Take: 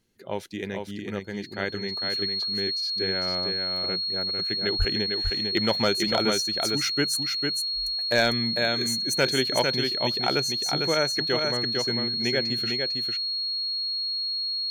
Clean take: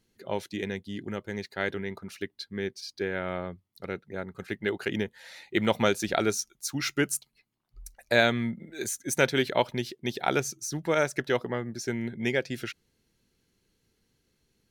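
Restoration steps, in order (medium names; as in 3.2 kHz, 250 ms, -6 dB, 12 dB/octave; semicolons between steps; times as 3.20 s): clip repair -12.5 dBFS; band-stop 4.3 kHz, Q 30; 4.78–4.90 s: high-pass 140 Hz 24 dB/octave; inverse comb 451 ms -4.5 dB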